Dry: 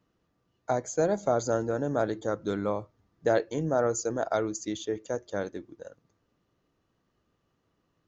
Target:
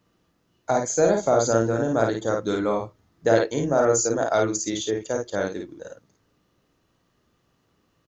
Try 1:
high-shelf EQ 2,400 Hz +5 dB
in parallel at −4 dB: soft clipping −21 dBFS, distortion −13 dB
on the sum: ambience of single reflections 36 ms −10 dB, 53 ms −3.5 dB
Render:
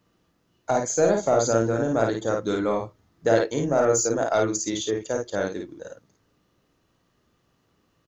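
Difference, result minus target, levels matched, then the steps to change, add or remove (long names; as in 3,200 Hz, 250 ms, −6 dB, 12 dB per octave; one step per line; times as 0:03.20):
soft clipping: distortion +13 dB
change: soft clipping −11.5 dBFS, distortion −26 dB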